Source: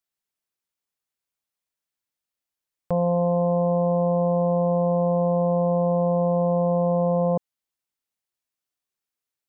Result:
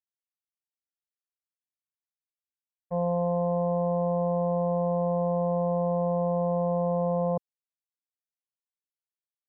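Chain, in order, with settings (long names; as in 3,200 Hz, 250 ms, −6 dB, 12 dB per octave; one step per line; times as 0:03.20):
low-pass that shuts in the quiet parts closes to 490 Hz
downward expander −17 dBFS
parametric band 290 Hz −9 dB 0.86 octaves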